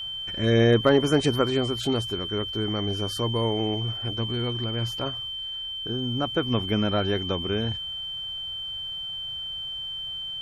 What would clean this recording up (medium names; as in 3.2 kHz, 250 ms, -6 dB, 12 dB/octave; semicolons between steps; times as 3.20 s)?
clip repair -9.5 dBFS; band-stop 3.1 kHz, Q 30